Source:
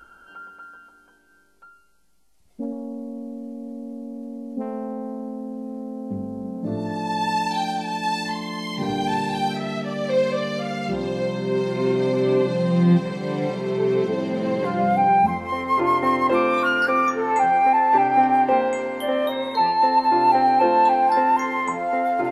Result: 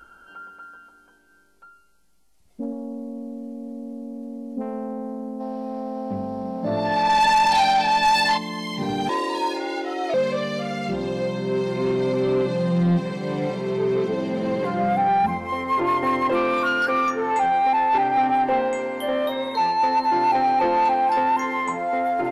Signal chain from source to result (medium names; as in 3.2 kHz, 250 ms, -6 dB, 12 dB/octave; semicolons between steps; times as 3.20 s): 5.41–8.38 s: time-frequency box 530–5800 Hz +12 dB; saturation -14 dBFS, distortion -13 dB; 9.09–10.14 s: frequency shift +140 Hz